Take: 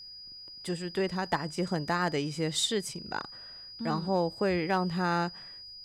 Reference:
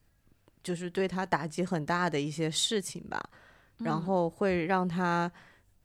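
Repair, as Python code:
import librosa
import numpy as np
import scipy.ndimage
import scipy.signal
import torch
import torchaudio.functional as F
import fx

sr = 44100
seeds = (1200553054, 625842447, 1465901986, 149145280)

y = fx.fix_declip(x, sr, threshold_db=-18.5)
y = fx.notch(y, sr, hz=4900.0, q=30.0)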